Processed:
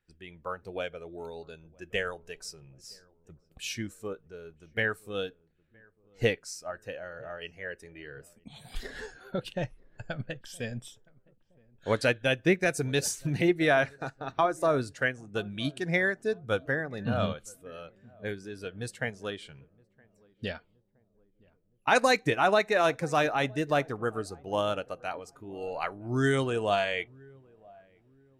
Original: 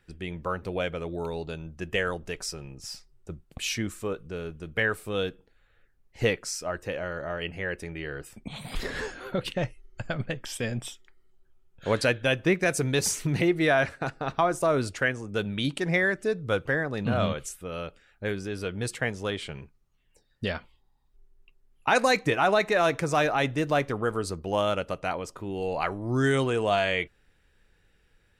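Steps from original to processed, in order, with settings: filtered feedback delay 968 ms, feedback 58%, low-pass 830 Hz, level -17 dB; spectral noise reduction 7 dB; upward expansion 1.5:1, over -35 dBFS

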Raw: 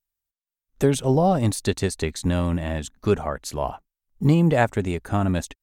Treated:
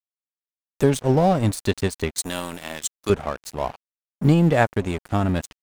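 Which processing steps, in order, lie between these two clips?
2.18–3.10 s: RIAA curve recording; vibrato 0.56 Hz 16 cents; crossover distortion -34.5 dBFS; trim +2 dB

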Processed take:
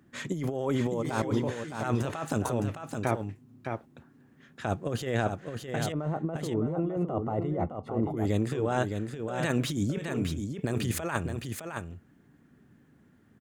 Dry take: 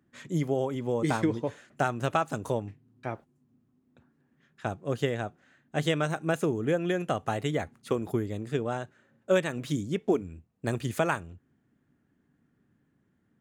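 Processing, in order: compressor with a negative ratio -34 dBFS, ratio -1; 5.92–8.17 s: Savitzky-Golay filter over 65 samples; delay 613 ms -6 dB; trim +4 dB

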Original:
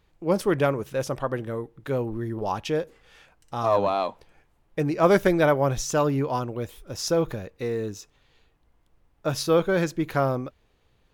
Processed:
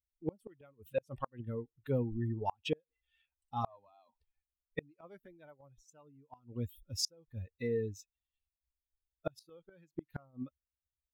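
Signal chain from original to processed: expander on every frequency bin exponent 2; inverted gate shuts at -24 dBFS, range -36 dB; trim +2.5 dB

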